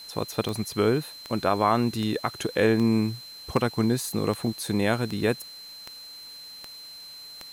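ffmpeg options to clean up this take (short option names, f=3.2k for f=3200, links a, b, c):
-af "adeclick=t=4,bandreject=f=4.1k:w=30,afwtdn=0.0028"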